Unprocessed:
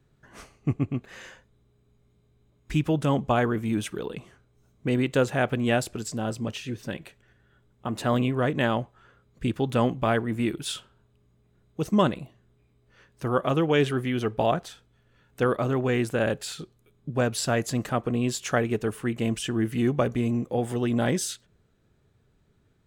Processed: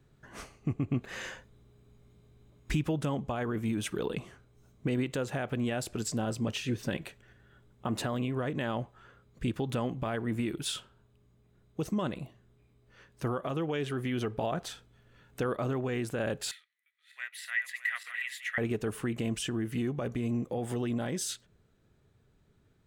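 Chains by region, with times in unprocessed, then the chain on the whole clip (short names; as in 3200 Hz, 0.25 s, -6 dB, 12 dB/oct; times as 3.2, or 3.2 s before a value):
16.51–18.58 regenerating reverse delay 0.305 s, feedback 53%, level -9.5 dB + ladder high-pass 1900 Hz, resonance 90% + band shelf 6000 Hz -8.5 dB 1 oct
whole clip: compressor, threshold -25 dBFS; limiter -22.5 dBFS; vocal rider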